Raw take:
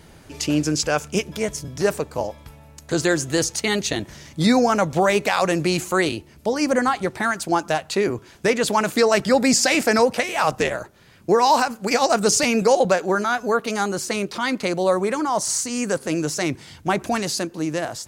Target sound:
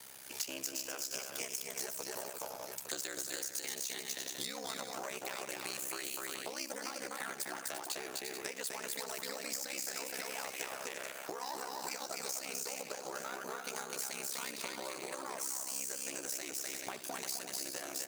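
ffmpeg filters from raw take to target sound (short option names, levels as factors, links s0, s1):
-filter_complex "[0:a]aeval=exprs='if(lt(val(0),0),0.447*val(0),val(0))':c=same,acrossover=split=190|440[s0][s1][s2];[s0]acompressor=threshold=0.0126:ratio=4[s3];[s1]acompressor=threshold=0.0447:ratio=4[s4];[s2]acompressor=threshold=0.0398:ratio=4[s5];[s3][s4][s5]amix=inputs=3:normalize=0,highpass=f=70:w=0.5412,highpass=f=70:w=1.3066,asplit=2[s6][s7];[s7]aecho=0:1:66|252|345|432|856:0.15|0.708|0.376|0.282|0.141[s8];[s6][s8]amix=inputs=2:normalize=0,aeval=exprs='val(0)*sin(2*PI*33*n/s)':c=same,aemphasis=mode=production:type=bsi,acompressor=threshold=0.0178:ratio=12,lowshelf=f=480:g=-10,acrusher=bits=4:mode=log:mix=0:aa=0.000001"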